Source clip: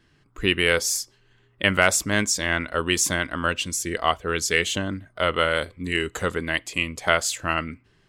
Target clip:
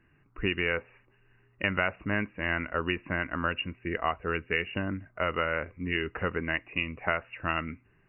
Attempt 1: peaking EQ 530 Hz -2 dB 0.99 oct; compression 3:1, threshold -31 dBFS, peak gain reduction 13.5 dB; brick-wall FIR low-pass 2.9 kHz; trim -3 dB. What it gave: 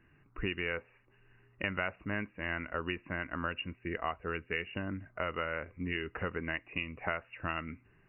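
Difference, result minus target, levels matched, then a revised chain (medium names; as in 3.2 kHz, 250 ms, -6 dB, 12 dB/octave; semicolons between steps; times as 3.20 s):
compression: peak gain reduction +6.5 dB
peaking EQ 530 Hz -2 dB 0.99 oct; compression 3:1, threshold -21 dBFS, peak gain reduction 7 dB; brick-wall FIR low-pass 2.9 kHz; trim -3 dB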